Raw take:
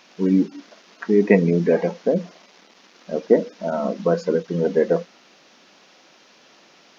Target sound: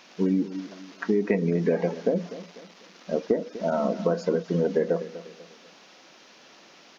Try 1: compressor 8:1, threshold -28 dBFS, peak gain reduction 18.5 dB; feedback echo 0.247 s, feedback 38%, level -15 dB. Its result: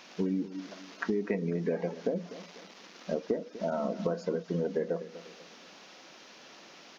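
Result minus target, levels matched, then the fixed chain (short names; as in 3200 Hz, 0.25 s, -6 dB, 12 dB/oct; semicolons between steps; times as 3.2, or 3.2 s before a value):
compressor: peak gain reduction +7.5 dB
compressor 8:1, threshold -19.5 dBFS, peak gain reduction 11 dB; feedback echo 0.247 s, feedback 38%, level -15 dB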